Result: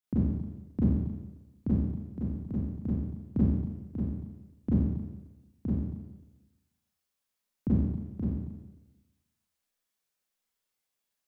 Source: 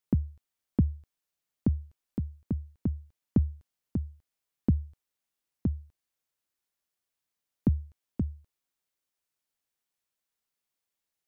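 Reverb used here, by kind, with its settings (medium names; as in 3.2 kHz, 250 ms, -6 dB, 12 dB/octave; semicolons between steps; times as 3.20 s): Schroeder reverb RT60 1.1 s, combs from 30 ms, DRR -10 dB; trim -8 dB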